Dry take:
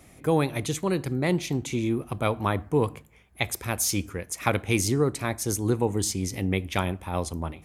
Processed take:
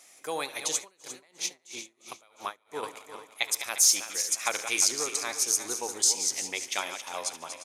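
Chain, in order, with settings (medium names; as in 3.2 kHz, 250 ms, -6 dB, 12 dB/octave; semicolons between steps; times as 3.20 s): backward echo that repeats 176 ms, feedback 63%, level -9 dB; high-pass 660 Hz 12 dB/octave; peaking EQ 6.1 kHz +12.5 dB 1.5 oct; feedback delay 72 ms, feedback 52%, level -17 dB; 0.78–2.83 s: logarithmic tremolo 3 Hz, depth 32 dB; trim -4.5 dB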